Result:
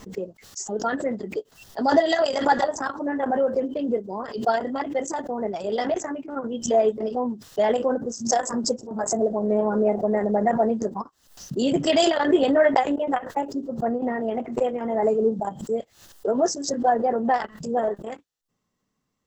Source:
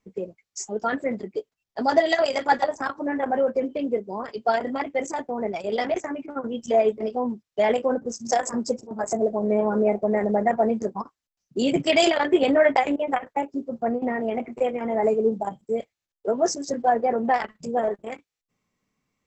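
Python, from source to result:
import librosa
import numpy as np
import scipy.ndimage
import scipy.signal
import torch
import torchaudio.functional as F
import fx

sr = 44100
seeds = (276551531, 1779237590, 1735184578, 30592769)

y = fx.peak_eq(x, sr, hz=2300.0, db=-13.0, octaves=0.24)
y = fx.pre_swell(y, sr, db_per_s=110.0)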